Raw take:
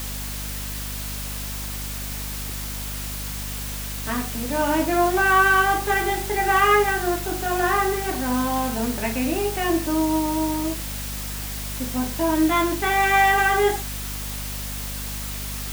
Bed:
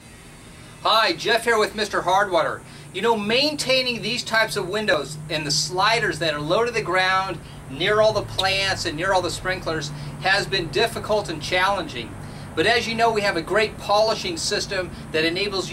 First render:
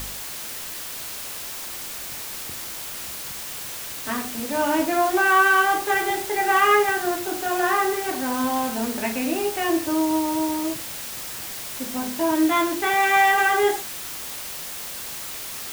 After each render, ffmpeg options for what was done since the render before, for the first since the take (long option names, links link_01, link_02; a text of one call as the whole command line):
ffmpeg -i in.wav -af "bandreject=frequency=50:width_type=h:width=4,bandreject=frequency=100:width_type=h:width=4,bandreject=frequency=150:width_type=h:width=4,bandreject=frequency=200:width_type=h:width=4,bandreject=frequency=250:width_type=h:width=4,bandreject=frequency=300:width_type=h:width=4,bandreject=frequency=350:width_type=h:width=4,bandreject=frequency=400:width_type=h:width=4,bandreject=frequency=450:width_type=h:width=4" out.wav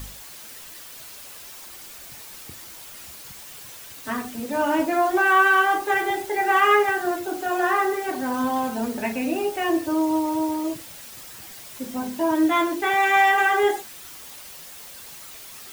ffmpeg -i in.wav -af "afftdn=noise_reduction=9:noise_floor=-34" out.wav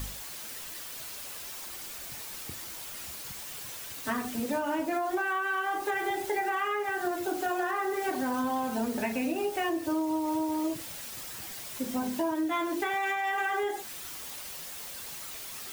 ffmpeg -i in.wav -af "alimiter=limit=-15dB:level=0:latency=1:release=260,acompressor=threshold=-27dB:ratio=6" out.wav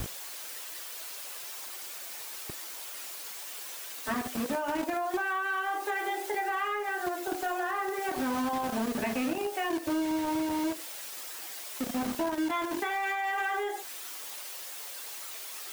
ffmpeg -i in.wav -filter_complex "[0:a]acrossover=split=310[link_01][link_02];[link_01]acrusher=bits=5:mix=0:aa=0.000001[link_03];[link_03][link_02]amix=inputs=2:normalize=0,asoftclip=type=tanh:threshold=-20.5dB" out.wav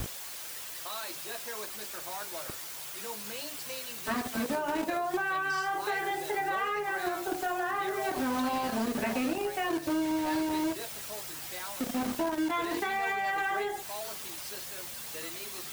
ffmpeg -i in.wav -i bed.wav -filter_complex "[1:a]volume=-23dB[link_01];[0:a][link_01]amix=inputs=2:normalize=0" out.wav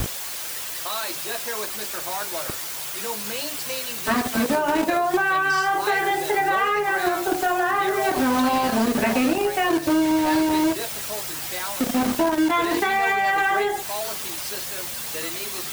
ffmpeg -i in.wav -af "volume=10dB" out.wav